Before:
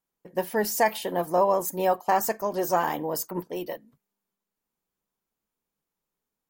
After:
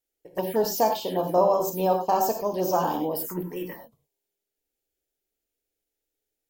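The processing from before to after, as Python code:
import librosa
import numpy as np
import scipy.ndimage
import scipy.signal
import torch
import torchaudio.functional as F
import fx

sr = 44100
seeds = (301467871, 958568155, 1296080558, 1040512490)

y = fx.rev_gated(x, sr, seeds[0], gate_ms=130, shape='flat', drr_db=4.0)
y = fx.env_phaser(y, sr, low_hz=180.0, high_hz=2000.0, full_db=-22.5)
y = y * librosa.db_to_amplitude(1.5)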